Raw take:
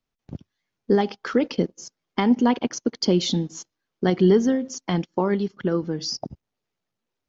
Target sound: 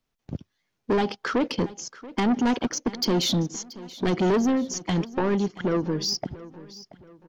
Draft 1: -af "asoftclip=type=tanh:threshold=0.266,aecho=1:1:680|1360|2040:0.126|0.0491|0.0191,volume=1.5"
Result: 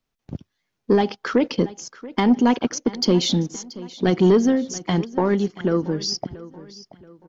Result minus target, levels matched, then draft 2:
saturation: distortion -11 dB
-af "asoftclip=type=tanh:threshold=0.0794,aecho=1:1:680|1360|2040:0.126|0.0491|0.0191,volume=1.5"

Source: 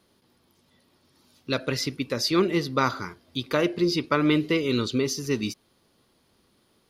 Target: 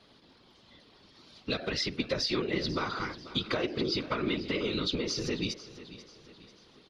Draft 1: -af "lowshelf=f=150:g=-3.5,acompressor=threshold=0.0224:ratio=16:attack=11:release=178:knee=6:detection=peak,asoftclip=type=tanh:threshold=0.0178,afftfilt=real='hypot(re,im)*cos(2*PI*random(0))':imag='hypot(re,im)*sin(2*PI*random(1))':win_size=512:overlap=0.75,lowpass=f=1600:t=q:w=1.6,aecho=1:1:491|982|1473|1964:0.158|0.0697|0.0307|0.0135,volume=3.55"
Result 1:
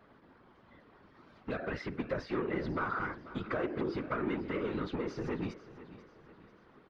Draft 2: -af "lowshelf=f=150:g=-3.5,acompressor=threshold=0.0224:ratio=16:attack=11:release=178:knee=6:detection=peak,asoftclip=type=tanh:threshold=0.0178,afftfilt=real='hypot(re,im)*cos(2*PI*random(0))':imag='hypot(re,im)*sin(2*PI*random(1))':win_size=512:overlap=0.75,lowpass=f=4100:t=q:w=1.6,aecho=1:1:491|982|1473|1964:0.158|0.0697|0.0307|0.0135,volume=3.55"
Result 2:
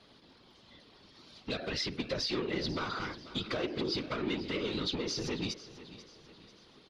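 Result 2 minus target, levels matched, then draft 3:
saturation: distortion +12 dB
-af "lowshelf=f=150:g=-3.5,acompressor=threshold=0.0224:ratio=16:attack=11:release=178:knee=6:detection=peak,asoftclip=type=tanh:threshold=0.0631,afftfilt=real='hypot(re,im)*cos(2*PI*random(0))':imag='hypot(re,im)*sin(2*PI*random(1))':win_size=512:overlap=0.75,lowpass=f=4100:t=q:w=1.6,aecho=1:1:491|982|1473|1964:0.158|0.0697|0.0307|0.0135,volume=3.55"

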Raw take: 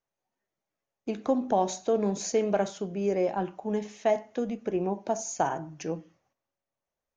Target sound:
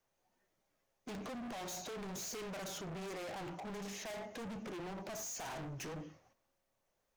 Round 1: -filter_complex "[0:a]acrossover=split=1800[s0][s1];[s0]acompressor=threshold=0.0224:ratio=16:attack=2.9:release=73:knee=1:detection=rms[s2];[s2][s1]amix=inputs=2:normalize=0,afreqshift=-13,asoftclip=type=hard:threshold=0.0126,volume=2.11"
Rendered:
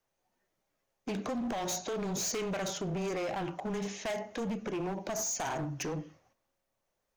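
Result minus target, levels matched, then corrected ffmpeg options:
hard clipper: distortion -6 dB
-filter_complex "[0:a]acrossover=split=1800[s0][s1];[s0]acompressor=threshold=0.0224:ratio=16:attack=2.9:release=73:knee=1:detection=rms[s2];[s2][s1]amix=inputs=2:normalize=0,afreqshift=-13,asoftclip=type=hard:threshold=0.00335,volume=2.11"

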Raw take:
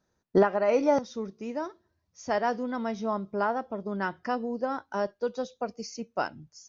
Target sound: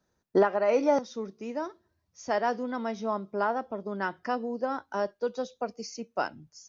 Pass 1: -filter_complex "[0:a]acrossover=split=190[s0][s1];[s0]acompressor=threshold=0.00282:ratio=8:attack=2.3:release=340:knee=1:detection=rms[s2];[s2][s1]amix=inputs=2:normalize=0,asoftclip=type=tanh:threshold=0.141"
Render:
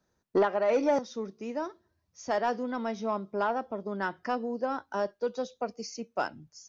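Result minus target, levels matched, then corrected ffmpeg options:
saturation: distortion +15 dB
-filter_complex "[0:a]acrossover=split=190[s0][s1];[s0]acompressor=threshold=0.00282:ratio=8:attack=2.3:release=340:knee=1:detection=rms[s2];[s2][s1]amix=inputs=2:normalize=0,asoftclip=type=tanh:threshold=0.422"

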